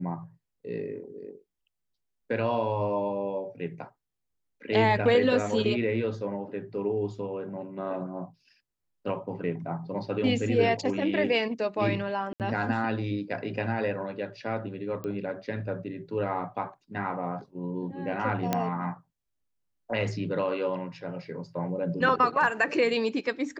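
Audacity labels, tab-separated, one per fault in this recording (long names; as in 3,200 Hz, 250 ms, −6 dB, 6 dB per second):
12.330000	12.400000	drop-out 68 ms
15.040000	15.040000	click −24 dBFS
18.530000	18.530000	click −11 dBFS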